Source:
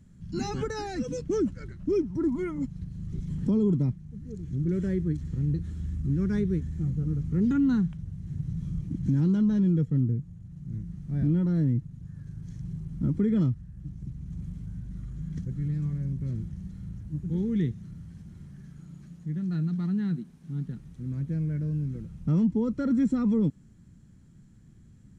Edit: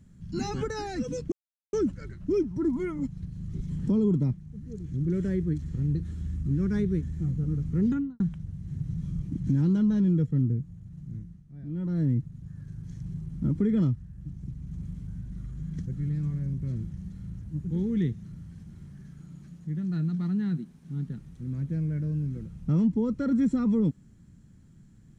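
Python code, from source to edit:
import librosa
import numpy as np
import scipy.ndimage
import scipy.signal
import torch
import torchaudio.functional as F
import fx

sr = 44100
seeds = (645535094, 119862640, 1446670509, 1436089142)

y = fx.studio_fade_out(x, sr, start_s=7.42, length_s=0.37)
y = fx.edit(y, sr, fx.insert_silence(at_s=1.32, length_s=0.41),
    fx.fade_down_up(start_s=10.59, length_s=1.09, db=-15.0, fade_s=0.44), tone=tone)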